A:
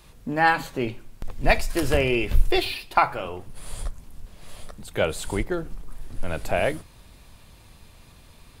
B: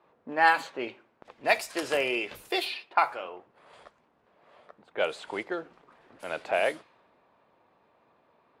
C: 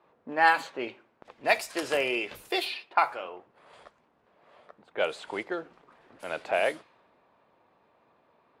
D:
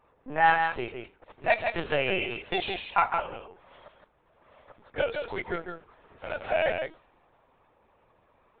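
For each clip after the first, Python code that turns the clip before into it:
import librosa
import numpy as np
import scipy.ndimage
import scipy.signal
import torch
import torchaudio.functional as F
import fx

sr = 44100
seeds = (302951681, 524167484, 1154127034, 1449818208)

y1 = fx.env_lowpass(x, sr, base_hz=1000.0, full_db=-16.0)
y1 = scipy.signal.sosfilt(scipy.signal.butter(2, 450.0, 'highpass', fs=sr, output='sos'), y1)
y1 = fx.rider(y1, sr, range_db=3, speed_s=2.0)
y1 = F.gain(torch.from_numpy(y1), -2.5).numpy()
y2 = y1
y3 = y2 + 10.0 ** (-6.0 / 20.0) * np.pad(y2, (int(160 * sr / 1000.0), 0))[:len(y2)]
y3 = fx.lpc_vocoder(y3, sr, seeds[0], excitation='pitch_kept', order=16)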